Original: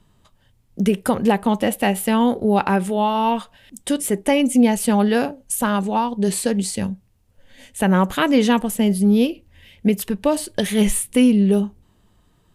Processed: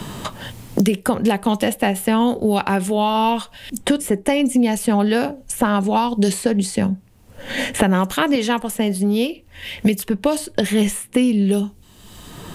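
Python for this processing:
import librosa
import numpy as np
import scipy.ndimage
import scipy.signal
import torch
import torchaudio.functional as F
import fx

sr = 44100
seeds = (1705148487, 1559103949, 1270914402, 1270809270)

y = fx.rider(x, sr, range_db=10, speed_s=2.0)
y = fx.low_shelf(y, sr, hz=330.0, db=-10.5, at=(8.35, 9.86))
y = fx.band_squash(y, sr, depth_pct=100)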